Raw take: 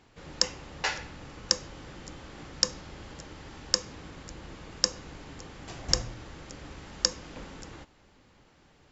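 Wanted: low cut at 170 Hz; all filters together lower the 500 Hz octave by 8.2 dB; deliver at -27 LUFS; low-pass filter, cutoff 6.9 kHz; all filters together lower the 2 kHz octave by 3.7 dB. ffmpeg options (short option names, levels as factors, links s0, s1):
-af "highpass=170,lowpass=6900,equalizer=f=500:t=o:g=-9,equalizer=f=2000:t=o:g=-4,volume=1.68"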